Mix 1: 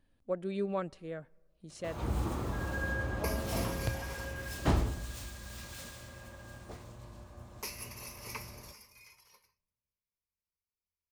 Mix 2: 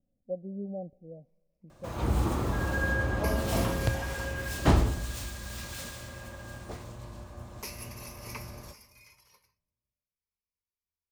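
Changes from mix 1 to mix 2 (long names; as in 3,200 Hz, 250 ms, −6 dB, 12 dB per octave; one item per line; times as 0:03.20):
speech: add Chebyshev low-pass with heavy ripple 770 Hz, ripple 9 dB
first sound +6.0 dB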